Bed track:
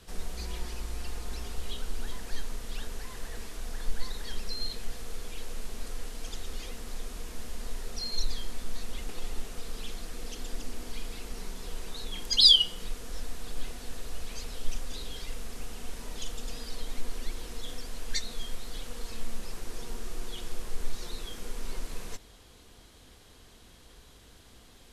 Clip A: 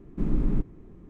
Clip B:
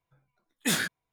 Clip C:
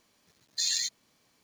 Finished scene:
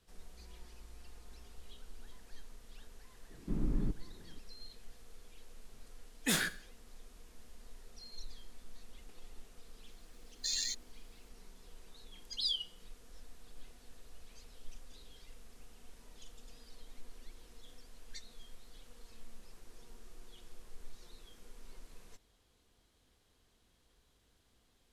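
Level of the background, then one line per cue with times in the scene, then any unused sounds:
bed track −17 dB
0:03.30: mix in A −8.5 dB
0:05.61: mix in B −5 dB + four-comb reverb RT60 0.45 s, combs from 30 ms, DRR 13.5 dB
0:09.86: mix in C −7 dB

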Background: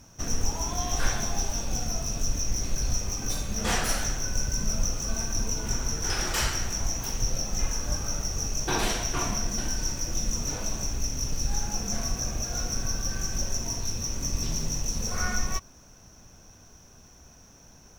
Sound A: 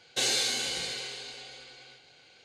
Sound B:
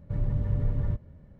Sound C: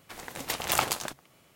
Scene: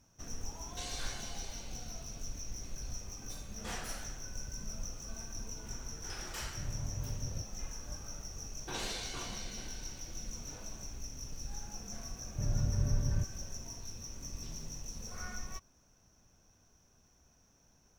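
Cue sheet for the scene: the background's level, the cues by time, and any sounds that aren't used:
background −14.5 dB
0:00.60: mix in A −17.5 dB
0:06.47: mix in B −12.5 dB
0:08.57: mix in A −13 dB + high-shelf EQ 6,600 Hz −7.5 dB
0:12.28: mix in B −4.5 dB + notch filter 490 Hz, Q 11
not used: C

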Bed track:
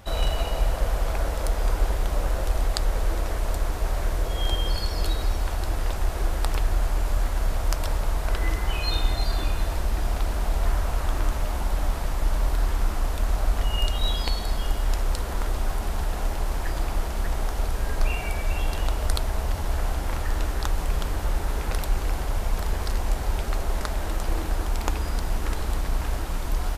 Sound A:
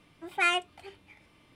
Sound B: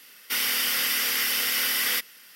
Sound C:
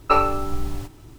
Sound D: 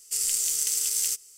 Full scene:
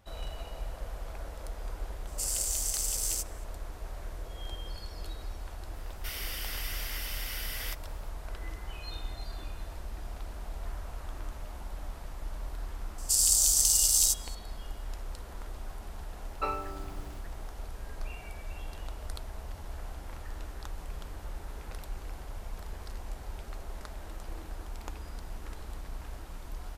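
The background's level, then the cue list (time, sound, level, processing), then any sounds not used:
bed track −15 dB
0:02.07: mix in D −6 dB
0:05.74: mix in B −14 dB
0:12.98: mix in D −11 dB + high shelf with overshoot 2,800 Hz +12 dB, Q 1.5
0:16.32: mix in C −15 dB + high-pass filter 63 Hz
not used: A

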